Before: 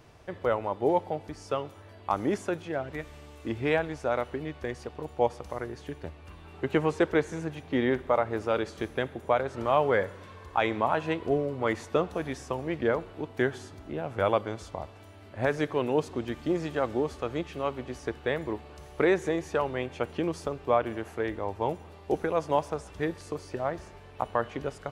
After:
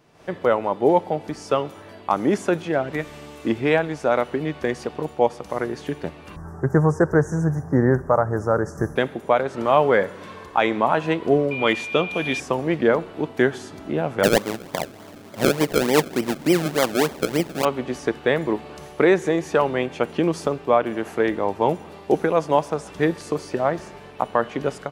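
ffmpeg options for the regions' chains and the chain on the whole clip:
ffmpeg -i in.wav -filter_complex "[0:a]asettb=1/sr,asplit=3[link_01][link_02][link_03];[link_01]atrim=end=6.364[link_04];[link_02]atrim=start=6.36:end=8.96,asetpts=PTS-STARTPTS,afade=type=in:duration=0.004:curve=qsin,afade=type=out:start_time=2.596:duration=0.004:curve=qsin,asuperstop=centerf=3100:order=12:qfactor=0.86,lowshelf=frequency=170:width_type=q:width=1.5:gain=11[link_05];[link_03]atrim=start=8.956[link_06];[link_04][link_05]acrossfade=duration=0.004:curve1=hsin:curve2=qsin[link_07];[link_07][link_06]acrossfade=duration=0.004:curve1=qsin:curve2=hsin,asettb=1/sr,asplit=3[link_08][link_09][link_10];[link_08]atrim=end=11.514[link_11];[link_09]atrim=start=11.51:end=12.4,asetpts=PTS-STARTPTS,afade=type=in:duration=0.004:curve=qsin,afade=type=out:start_time=0.886:duration=0.004:curve=qsin,equalizer=frequency=3100:width_type=o:width=0.58:gain=14,aeval=exprs='val(0)+0.02*sin(2*PI*2400*n/s)':channel_layout=same[link_12];[link_10]atrim=start=12.396[link_13];[link_11][link_12]acrossfade=duration=0.004:curve1=hsin:curve2=qsin[link_14];[link_14][link_13]acrossfade=duration=0.004:curve1=qsin:curve2=hsin,asettb=1/sr,asplit=3[link_15][link_16][link_17];[link_15]atrim=end=14.234[link_18];[link_16]atrim=start=14.23:end=17.65,asetpts=PTS-STARTPTS,afade=type=in:duration=0.004:curve=qsin,afade=type=out:start_time=3.416:duration=0.004:curve=qsin,highpass=84,acrusher=samples=32:mix=1:aa=0.000001:lfo=1:lforange=32:lforate=3.4[link_19];[link_17]atrim=start=17.646[link_20];[link_18][link_19]acrossfade=duration=0.004:curve1=hsin:curve2=qsin[link_21];[link_21][link_20]acrossfade=duration=0.004:curve1=qsin:curve2=hsin,lowshelf=frequency=120:width_type=q:width=1.5:gain=-9.5,dynaudnorm=framelen=130:gausssize=3:maxgain=13.5dB,volume=-3.5dB" out.wav

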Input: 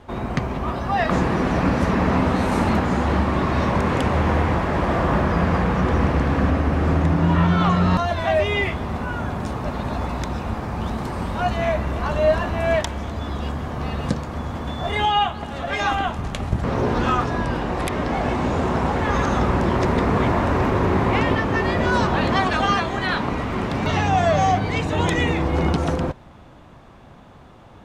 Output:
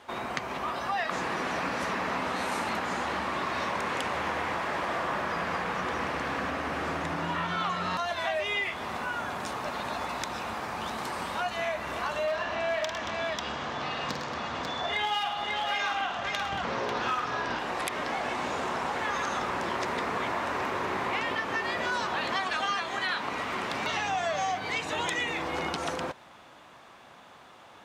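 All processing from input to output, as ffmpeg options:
ffmpeg -i in.wav -filter_complex "[0:a]asettb=1/sr,asplit=3[link_01][link_02][link_03];[link_01]atrim=end=12.274[link_04];[link_02]atrim=start=12.27:end=17.59,asetpts=PTS-STARTPTS,afade=type=in:duration=0.004:curve=qsin,afade=type=out:start_time=5.316:duration=0.004:curve=qsin,lowpass=frequency=6400:width=0.5412,lowpass=frequency=6400:width=1.3066,aeval=exprs='clip(val(0),-1,0.188)':channel_layout=same,aecho=1:1:48|105|127|228|543:0.447|0.299|0.119|0.178|0.531,atrim=end_sample=234612[link_05];[link_03]atrim=start=17.586[link_06];[link_04][link_05]acrossfade=duration=0.004:curve1=hsin:curve2=qsin[link_07];[link_07][link_06]acrossfade=duration=0.004:curve1=qsin:curve2=hsin,highpass=frequency=1400:poles=1,acompressor=threshold=-32dB:ratio=3,volume=3dB" out.wav

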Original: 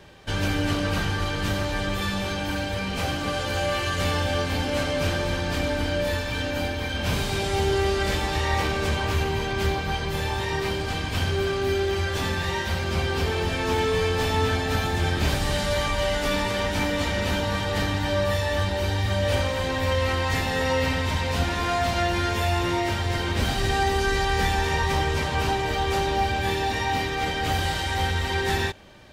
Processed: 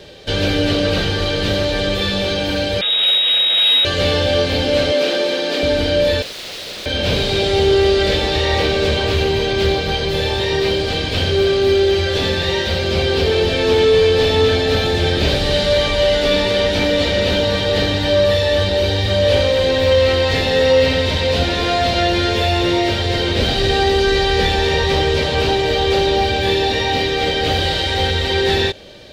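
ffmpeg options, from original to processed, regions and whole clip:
ffmpeg -i in.wav -filter_complex "[0:a]asettb=1/sr,asplit=3[link_01][link_02][link_03];[link_01]atrim=end=2.814[link_04];[link_02]atrim=start=2.81:end=3.85,asetpts=PTS-STARTPTS,afade=type=in:duration=0.004:curve=qsin,afade=type=out:start_time=1.036:duration=0.004:curve=qsin,aeval=exprs='abs(val(0))':channel_layout=same,lowpass=frequency=3200:width_type=q:width=0.5098,lowpass=frequency=3200:width_type=q:width=0.6013,lowpass=frequency=3200:width_type=q:width=0.9,lowpass=frequency=3200:width_type=q:width=2.563,afreqshift=-3800[link_05];[link_03]atrim=start=3.846[link_06];[link_04][link_05]acrossfade=duration=0.004:curve1=hsin:curve2=qsin[link_07];[link_07][link_06]acrossfade=duration=0.004:curve1=qsin:curve2=hsin,asettb=1/sr,asplit=3[link_08][link_09][link_10];[link_08]atrim=end=4.924[link_11];[link_09]atrim=start=4.92:end=5.63,asetpts=PTS-STARTPTS,afade=type=in:duration=0.004:curve=qsin,afade=type=out:start_time=0.706:duration=0.004:curve=qsin,highpass=frequency=240:width=0.5412,highpass=frequency=240:width=1.3066,aeval=exprs='sgn(val(0))*max(abs(val(0))-0.00266,0)':channel_layout=same[link_12];[link_10]atrim=start=5.626[link_13];[link_11][link_12]acrossfade=duration=0.004:curve1=hsin:curve2=qsin[link_14];[link_14][link_13]acrossfade=duration=0.004:curve1=qsin:curve2=hsin,asettb=1/sr,asplit=3[link_15][link_16][link_17];[link_15]atrim=end=6.224[link_18];[link_16]atrim=start=6.22:end=6.86,asetpts=PTS-STARTPTS,afade=type=in:duration=0.004:curve=qsin,afade=type=out:start_time=0.636:duration=0.004:curve=qsin,lowpass=frequency=2100:poles=1,lowshelf=frequency=80:gain=-11,aeval=exprs='(mod(44.7*val(0)+1,2)-1)/44.7':channel_layout=same[link_19];[link_17]atrim=start=6.856[link_20];[link_18][link_19]acrossfade=duration=0.004:curve1=hsin:curve2=qsin[link_21];[link_21][link_20]acrossfade=duration=0.004:curve1=qsin:curve2=hsin,acrossover=split=4500[link_22][link_23];[link_23]acompressor=threshold=-46dB:ratio=4:attack=1:release=60[link_24];[link_22][link_24]amix=inputs=2:normalize=0,equalizer=frequency=500:width_type=o:width=1:gain=11,equalizer=frequency=1000:width_type=o:width=1:gain=-7,equalizer=frequency=4000:width_type=o:width=1:gain=11,acontrast=74,volume=-1.5dB" out.wav

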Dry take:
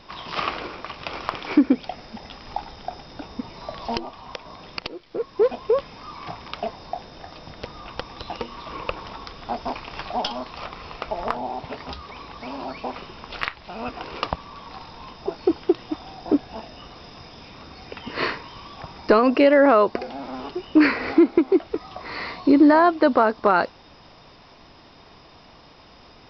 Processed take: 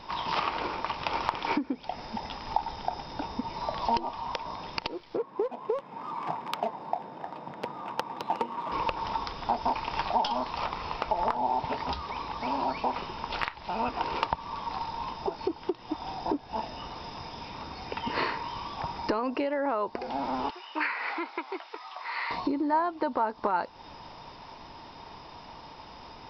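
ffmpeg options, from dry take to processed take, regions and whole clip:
ffmpeg -i in.wav -filter_complex "[0:a]asettb=1/sr,asplit=3[link_01][link_02][link_03];[link_01]atrim=end=5.174[link_04];[link_02]atrim=start=5.17:end=8.72,asetpts=PTS-STARTPTS,afade=type=in:duration=0.004:curve=qsin,afade=type=out:start_time=3.546:duration=0.004:curve=qsin,highpass=frequency=150:width=0.5412,highpass=frequency=150:width=1.3066,adynamicsmooth=sensitivity=2.5:basefreq=1600[link_05];[link_03]atrim=start=8.716[link_06];[link_04][link_05]acrossfade=duration=0.004:curve1=hsin:curve2=qsin[link_07];[link_07][link_06]acrossfade=duration=0.004:curve1=qsin:curve2=hsin,asettb=1/sr,asplit=3[link_08][link_09][link_10];[link_08]atrim=end=20.504[link_11];[link_09]atrim=start=20.5:end=22.31,asetpts=PTS-STARTPTS,afade=type=in:duration=0.004:curve=qsin,afade=type=out:start_time=1.806:duration=0.004:curve=qsin,highpass=1200,acrossover=split=3700[link_12][link_13];[link_13]acompressor=threshold=-56dB:ratio=4:attack=1:release=60[link_14];[link_12][link_14]amix=inputs=2:normalize=0[link_15];[link_10]atrim=start=22.306[link_16];[link_11][link_15]acrossfade=duration=0.004:curve1=hsin:curve2=qsin[link_17];[link_17][link_16]acrossfade=duration=0.004:curve1=qsin:curve2=hsin,acompressor=threshold=-27dB:ratio=10,equalizer=frequency=910:width_type=o:width=0.26:gain=12" out.wav

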